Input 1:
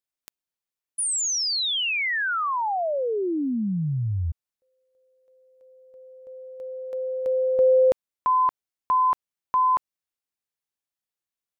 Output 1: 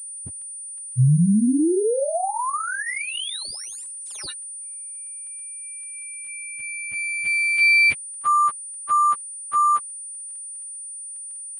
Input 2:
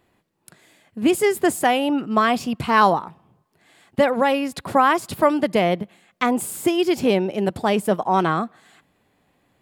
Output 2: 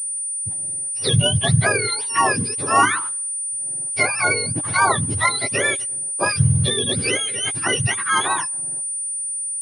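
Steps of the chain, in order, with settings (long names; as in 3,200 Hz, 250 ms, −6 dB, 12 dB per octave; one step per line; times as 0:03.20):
frequency axis turned over on the octave scale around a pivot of 1,100 Hz
surface crackle 19 per second −46 dBFS
switching amplifier with a slow clock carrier 9,300 Hz
level +2.5 dB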